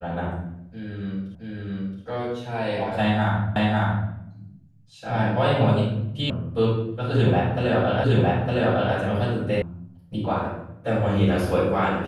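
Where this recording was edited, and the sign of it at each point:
0:01.35: the same again, the last 0.67 s
0:03.56: the same again, the last 0.55 s
0:06.30: cut off before it has died away
0:08.04: the same again, the last 0.91 s
0:09.62: cut off before it has died away

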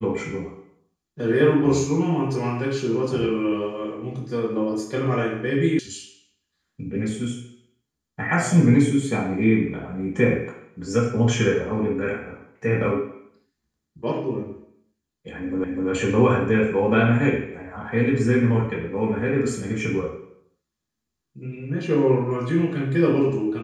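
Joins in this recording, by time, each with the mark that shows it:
0:05.79: cut off before it has died away
0:15.64: the same again, the last 0.25 s

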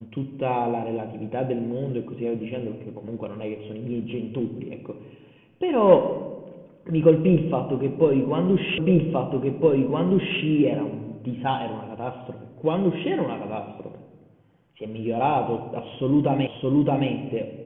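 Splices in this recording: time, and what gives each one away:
0:08.78: the same again, the last 1.62 s
0:16.47: the same again, the last 0.62 s

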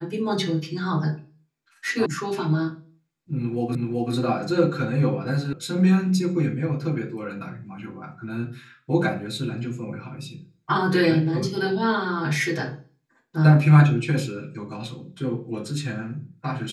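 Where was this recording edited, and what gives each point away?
0:02.06: cut off before it has died away
0:03.75: the same again, the last 0.38 s
0:05.53: cut off before it has died away

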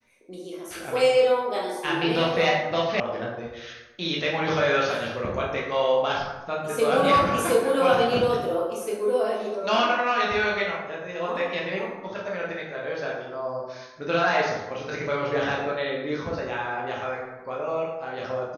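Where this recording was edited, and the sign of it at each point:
0:03.00: cut off before it has died away

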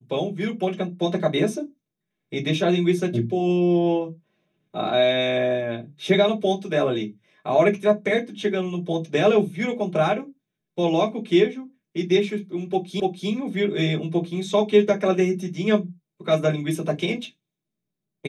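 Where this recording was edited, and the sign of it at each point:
0:13.00: the same again, the last 0.29 s

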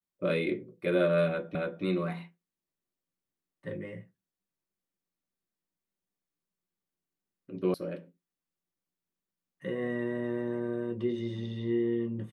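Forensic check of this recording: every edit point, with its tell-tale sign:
0:01.55: the same again, the last 0.28 s
0:07.74: cut off before it has died away

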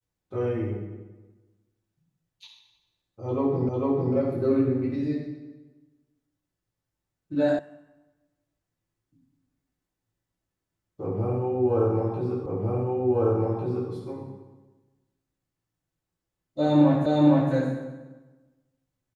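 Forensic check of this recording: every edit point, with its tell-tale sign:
0:03.69: the same again, the last 0.45 s
0:07.59: cut off before it has died away
0:12.46: the same again, the last 1.45 s
0:17.06: the same again, the last 0.46 s

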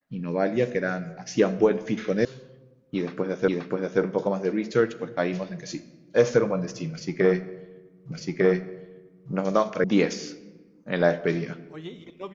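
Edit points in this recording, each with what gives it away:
0:02.25: cut off before it has died away
0:03.48: the same again, the last 0.53 s
0:08.12: the same again, the last 1.2 s
0:09.84: cut off before it has died away

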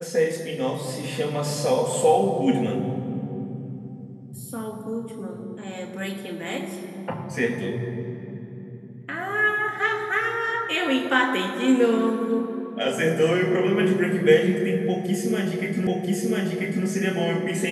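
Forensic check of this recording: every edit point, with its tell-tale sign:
0:15.87: the same again, the last 0.99 s

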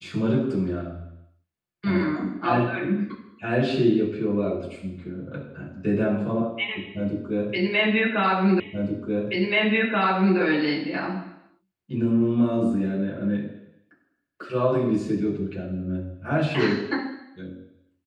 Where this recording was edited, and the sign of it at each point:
0:08.60: the same again, the last 1.78 s

